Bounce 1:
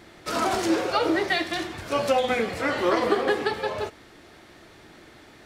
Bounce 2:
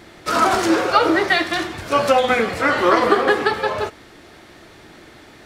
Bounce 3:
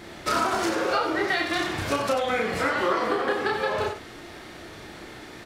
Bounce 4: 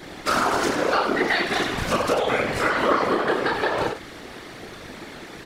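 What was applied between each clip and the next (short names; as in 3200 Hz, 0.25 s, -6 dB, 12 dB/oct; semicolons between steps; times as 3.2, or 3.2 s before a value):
dynamic EQ 1300 Hz, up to +6 dB, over -39 dBFS, Q 1.6; gain +5.5 dB
compressor, threshold -24 dBFS, peak gain reduction 13.5 dB; loudspeakers at several distances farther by 11 m -3 dB, 32 m -7 dB
whisperiser; gain +3 dB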